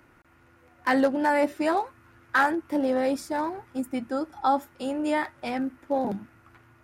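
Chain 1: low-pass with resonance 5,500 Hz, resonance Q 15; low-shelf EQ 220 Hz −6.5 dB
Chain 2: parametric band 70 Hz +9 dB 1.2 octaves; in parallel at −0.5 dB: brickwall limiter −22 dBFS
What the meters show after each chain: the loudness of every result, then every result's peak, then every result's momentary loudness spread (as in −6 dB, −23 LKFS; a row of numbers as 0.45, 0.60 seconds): −27.0, −23.0 LKFS; −11.0, −10.0 dBFS; 10, 7 LU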